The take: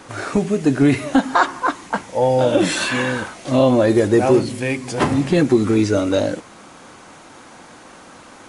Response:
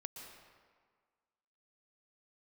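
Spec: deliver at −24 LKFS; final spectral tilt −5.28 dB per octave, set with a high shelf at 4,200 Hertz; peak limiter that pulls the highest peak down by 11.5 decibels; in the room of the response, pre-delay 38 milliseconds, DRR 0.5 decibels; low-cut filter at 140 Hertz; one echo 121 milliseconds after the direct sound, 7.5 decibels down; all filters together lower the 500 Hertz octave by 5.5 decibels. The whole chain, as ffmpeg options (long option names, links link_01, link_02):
-filter_complex "[0:a]highpass=140,equalizer=frequency=500:width_type=o:gain=-7,highshelf=frequency=4200:gain=-5.5,alimiter=limit=-16.5dB:level=0:latency=1,aecho=1:1:121:0.422,asplit=2[link_01][link_02];[1:a]atrim=start_sample=2205,adelay=38[link_03];[link_02][link_03]afir=irnorm=-1:irlink=0,volume=3dB[link_04];[link_01][link_04]amix=inputs=2:normalize=0,volume=-1.5dB"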